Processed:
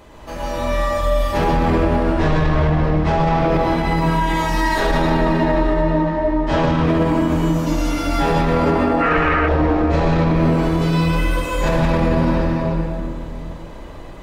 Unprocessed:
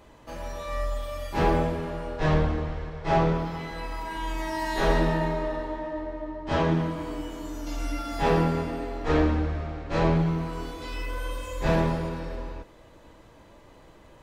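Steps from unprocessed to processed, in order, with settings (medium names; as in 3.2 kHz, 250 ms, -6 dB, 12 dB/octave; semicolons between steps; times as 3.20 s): 8.53–9.17 s: peaking EQ 780 Hz +11 dB 2.7 oct; reverberation RT60 2.3 s, pre-delay 104 ms, DRR -4.5 dB; 9.02–9.48 s: time-frequency box 1.1–3.1 kHz +12 dB; loudness maximiser +15.5 dB; trim -7.5 dB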